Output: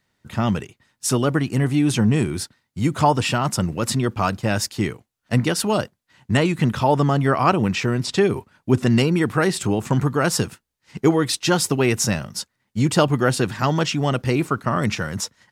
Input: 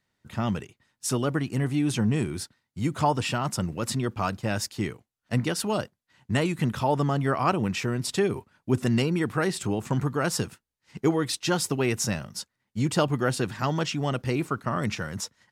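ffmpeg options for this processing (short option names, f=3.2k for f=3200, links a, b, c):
-filter_complex "[0:a]asettb=1/sr,asplit=3[a][b][c];[a]atrim=end=6.374[d];[b]atrim=start=6.37:end=8.9,asetpts=PTS-STARTPTS,afade=t=in:d=0.004:c=qsin,afade=t=out:st=2.526:d=0.004:c=qsin,acrossover=split=7100[e][f];[f]acompressor=threshold=-54dB:ratio=4:attack=1:release=60[g];[e][g]amix=inputs=2:normalize=0[h];[c]atrim=start=8.896[i];[d][h]acrossfade=d=0.004:c1=hsin:c2=qsin[j];[j][i]acrossfade=d=0.004:c1=qsin:c2=hsin,volume=6.5dB"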